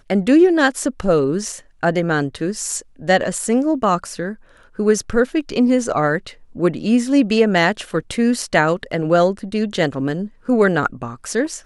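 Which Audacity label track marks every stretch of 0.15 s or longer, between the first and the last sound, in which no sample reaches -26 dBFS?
1.580000	1.830000	silence
2.800000	3.020000	silence
4.330000	4.790000	silence
6.290000	6.570000	silence
10.260000	10.490000	silence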